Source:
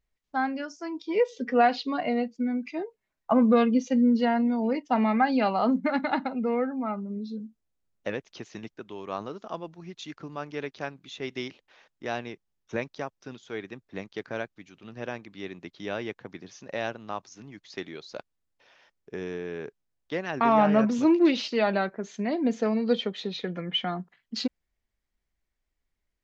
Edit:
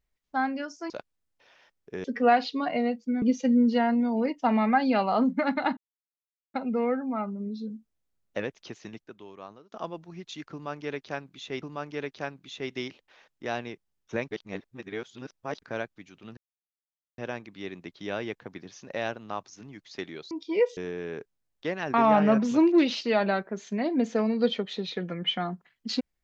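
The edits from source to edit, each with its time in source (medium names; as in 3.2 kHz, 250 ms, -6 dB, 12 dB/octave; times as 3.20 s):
0.90–1.36 s: swap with 18.10–19.24 s
2.54–3.69 s: delete
6.24 s: insert silence 0.77 s
8.33–9.42 s: fade out, to -24 dB
10.22–11.32 s: loop, 2 plays
12.91–14.22 s: reverse
14.97 s: insert silence 0.81 s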